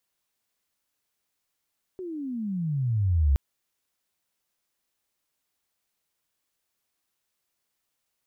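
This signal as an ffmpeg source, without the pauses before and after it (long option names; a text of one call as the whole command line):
ffmpeg -f lavfi -i "aevalsrc='pow(10,(-17+16*(t/1.37-1))/20)*sin(2*PI*381*1.37/(-30.5*log(2)/12)*(exp(-30.5*log(2)/12*t/1.37)-1))':duration=1.37:sample_rate=44100" out.wav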